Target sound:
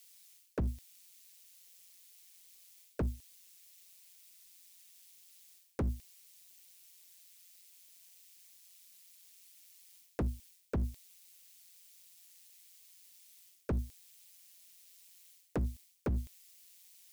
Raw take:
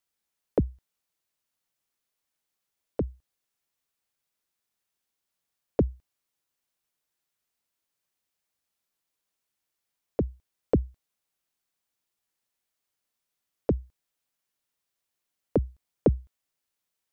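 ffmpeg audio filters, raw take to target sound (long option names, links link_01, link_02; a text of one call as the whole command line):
ffmpeg -i in.wav -af "areverse,acompressor=threshold=-32dB:ratio=12,areverse,aexciter=amount=4.2:drive=6.7:freq=2000,asoftclip=type=hard:threshold=-36dB,tremolo=f=180:d=0.571,volume=9dB" out.wav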